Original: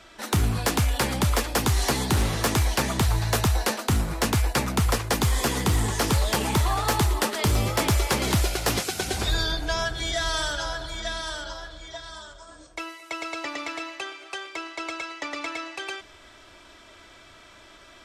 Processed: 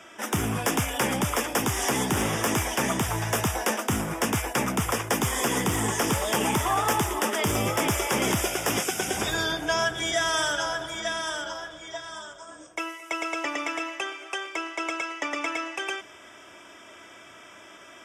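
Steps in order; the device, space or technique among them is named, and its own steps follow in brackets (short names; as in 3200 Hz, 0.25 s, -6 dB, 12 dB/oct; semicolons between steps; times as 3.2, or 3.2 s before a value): PA system with an anti-feedback notch (HPF 160 Hz 12 dB/oct; Butterworth band-stop 4200 Hz, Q 2.7; limiter -17 dBFS, peak gain reduction 5.5 dB); gain +3 dB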